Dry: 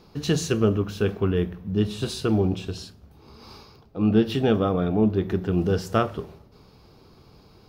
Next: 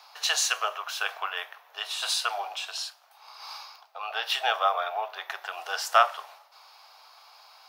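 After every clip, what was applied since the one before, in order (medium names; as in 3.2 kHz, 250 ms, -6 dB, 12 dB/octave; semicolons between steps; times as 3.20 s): steep high-pass 690 Hz 48 dB/octave; trim +7 dB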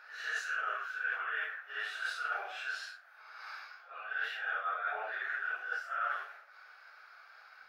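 phase randomisation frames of 200 ms; FFT filter 450 Hz 0 dB, 1 kHz -13 dB, 1.5 kHz +13 dB, 3.1 kHz -10 dB, 8.6 kHz -16 dB; reverse; compression 12:1, threshold -31 dBFS, peak gain reduction 19.5 dB; reverse; trim -1.5 dB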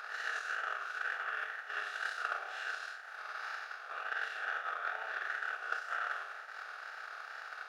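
spectral levelling over time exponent 0.4; wow and flutter 40 cents; transient shaper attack +11 dB, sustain -6 dB; trim -9 dB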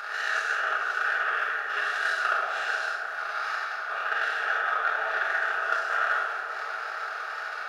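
on a send: feedback echo behind a low-pass 175 ms, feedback 84%, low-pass 1.3 kHz, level -8 dB; on the sum: simulated room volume 470 m³, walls mixed, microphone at 1.3 m; trim +7.5 dB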